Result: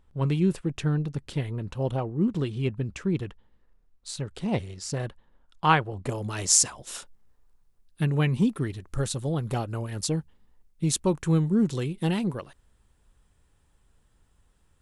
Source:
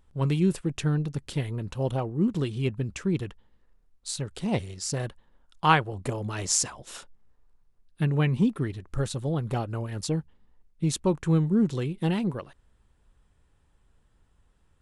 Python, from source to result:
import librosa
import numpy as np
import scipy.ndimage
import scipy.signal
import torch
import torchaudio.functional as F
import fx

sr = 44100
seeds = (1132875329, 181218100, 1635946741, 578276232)

y = fx.high_shelf(x, sr, hz=5300.0, db=fx.steps((0.0, -6.5), (6.08, 8.0)))